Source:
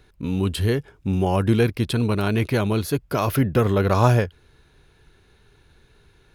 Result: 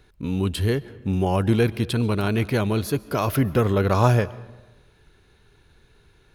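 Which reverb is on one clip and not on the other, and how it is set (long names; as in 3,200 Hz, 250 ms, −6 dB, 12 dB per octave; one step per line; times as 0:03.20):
comb and all-pass reverb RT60 1.1 s, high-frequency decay 0.6×, pre-delay 95 ms, DRR 19 dB
level −1 dB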